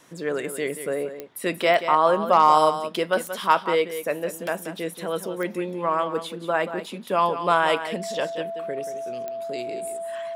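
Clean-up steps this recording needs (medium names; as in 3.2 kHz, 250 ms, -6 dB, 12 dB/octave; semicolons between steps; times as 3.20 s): de-click; band-stop 670 Hz, Q 30; inverse comb 182 ms -10.5 dB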